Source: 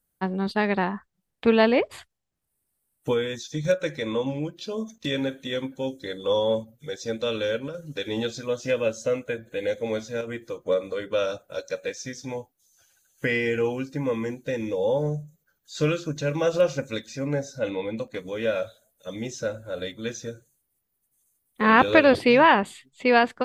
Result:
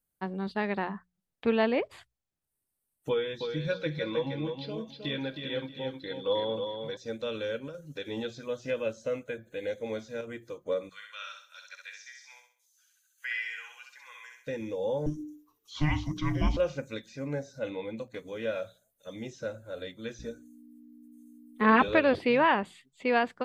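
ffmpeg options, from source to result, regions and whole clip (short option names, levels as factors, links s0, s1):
-filter_complex "[0:a]asettb=1/sr,asplit=3[s0][s1][s2];[s0]atrim=end=3.094[s3];[s1]atrim=start=3.09:end=6.97,asetpts=PTS-STARTPTS,afade=t=in:d=0.004:c=qsin,afade=t=out:st=3.876:d=0.004:c=qsin,highshelf=f=5300:t=q:w=3:g=-7.5,aecho=1:1:6.2:0.44,atrim=end_sample=171108,aecho=1:1:315|630|945:0.473|0.109|0.025,atrim=end_sample=171108[s4];[s2]atrim=start=6.966[s5];[s3][s4]acrossfade=d=0.004:c1=hsin:c2=qsin[s6];[s6][s5]acrossfade=d=0.004:c1=qsin:c2=hsin,asettb=1/sr,asplit=3[s7][s8][s9];[s7]atrim=end=10.894[s10];[s8]atrim=start=10.89:end=14.47,asetpts=PTS-STARTPTS,afade=t=in:d=0.004:c=qsin,afade=t=out:st=3.576:d=0.004:c=qsin,highpass=f=1300:w=0.5412,highpass=f=1300:w=1.3066,aecho=1:1:65|130|195|260|325:0.596|0.226|0.086|0.0327|0.0124,atrim=end_sample=157878[s11];[s9]atrim=start=14.466[s12];[s10][s11]acrossfade=d=0.004:c1=hsin:c2=qsin[s13];[s13][s12]acrossfade=d=0.004:c1=qsin:c2=hsin,asettb=1/sr,asplit=3[s14][s15][s16];[s14]atrim=end=15.064[s17];[s15]atrim=start=15.06:end=16.57,asetpts=PTS-STARTPTS,afade=t=in:d=0.004:c=qsin,afade=t=out:st=1.506:d=0.004:c=qsin,bandreject=f=50:t=h:w=6,bandreject=f=100:t=h:w=6,bandreject=f=150:t=h:w=6,bandreject=f=200:t=h:w=6,afreqshift=-450,acontrast=47[s18];[s16]atrim=start=16.566[s19];[s17][s18]acrossfade=d=0.004:c1=hsin:c2=qsin[s20];[s20][s19]acrossfade=d=0.004:c1=qsin:c2=hsin,asettb=1/sr,asplit=3[s21][s22][s23];[s21]atrim=end=20.194[s24];[s22]atrim=start=20.19:end=21.88,asetpts=PTS-STARTPTS,afade=t=in:d=0.004:c=qsin,afade=t=out:st=1.686:d=0.004:c=qsin,aecho=1:1:4.7:0.78,atrim=end_sample=74529,aeval=exprs='val(0)+0.0224*(sin(2*PI*60*n/s)+sin(2*PI*2*60*n/s)/2+sin(2*PI*3*60*n/s)/3+sin(2*PI*4*60*n/s)/4+sin(2*PI*5*60*n/s)/5)':c=same[s25];[s23]atrim=start=21.876[s26];[s24][s25]acrossfade=d=0.004:c1=hsin:c2=qsin[s27];[s27][s26]acrossfade=d=0.004:c1=qsin:c2=hsin,bandreject=f=60:t=h:w=6,bandreject=f=120:t=h:w=6,bandreject=f=180:t=h:w=6,acrossover=split=4300[s28][s29];[s29]acompressor=threshold=0.00282:ratio=4:attack=1:release=60[s30];[s28][s30]amix=inputs=2:normalize=0,volume=0.447"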